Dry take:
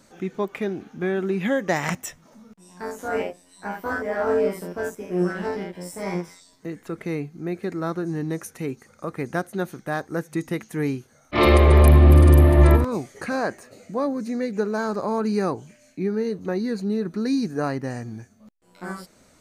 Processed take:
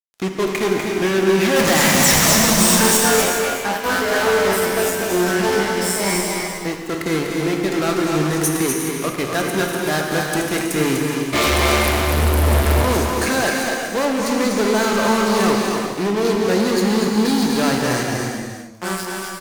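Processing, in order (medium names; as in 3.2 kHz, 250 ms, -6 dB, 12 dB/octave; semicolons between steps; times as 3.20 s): treble shelf 2.4 kHz +9 dB; 1.56–2.97 s: power-law waveshaper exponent 0.35; fuzz box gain 29 dB, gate -36 dBFS; tone controls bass -3 dB, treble +2 dB; delay 246 ms -5.5 dB; gated-style reverb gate 440 ms flat, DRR 0.5 dB; trim -3.5 dB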